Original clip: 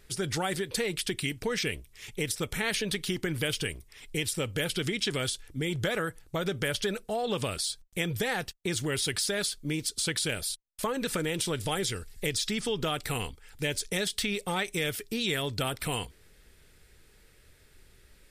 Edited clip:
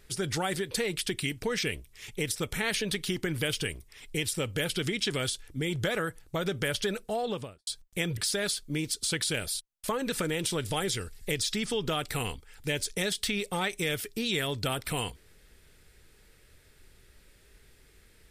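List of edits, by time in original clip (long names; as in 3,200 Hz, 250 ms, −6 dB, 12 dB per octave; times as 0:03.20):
0:07.16–0:07.67: fade out and dull
0:08.17–0:09.12: remove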